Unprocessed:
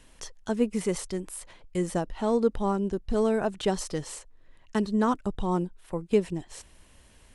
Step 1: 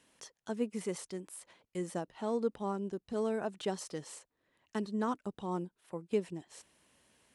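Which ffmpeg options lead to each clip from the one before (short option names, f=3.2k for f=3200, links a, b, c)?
-af "highpass=160,volume=-8.5dB"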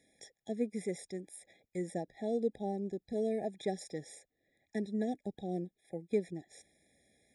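-af "afftfilt=real='re*eq(mod(floor(b*sr/1024/820),2),0)':imag='im*eq(mod(floor(b*sr/1024/820),2),0)':win_size=1024:overlap=0.75"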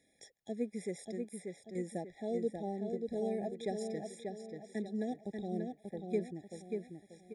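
-filter_complex "[0:a]asplit=2[a][b];[b]adelay=587,lowpass=f=4k:p=1,volume=-4.5dB,asplit=2[c][d];[d]adelay=587,lowpass=f=4k:p=1,volume=0.38,asplit=2[e][f];[f]adelay=587,lowpass=f=4k:p=1,volume=0.38,asplit=2[g][h];[h]adelay=587,lowpass=f=4k:p=1,volume=0.38,asplit=2[i][j];[j]adelay=587,lowpass=f=4k:p=1,volume=0.38[k];[a][c][e][g][i][k]amix=inputs=6:normalize=0,volume=-2.5dB"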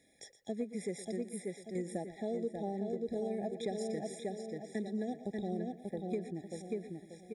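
-af "acompressor=threshold=-37dB:ratio=6,aecho=1:1:118|236|354:0.188|0.0584|0.0181,volume=4dB"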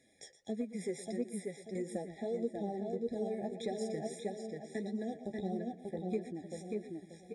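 -af "flanger=delay=7.4:depth=6.3:regen=31:speed=1.6:shape=triangular,aresample=22050,aresample=44100,volume=3.5dB"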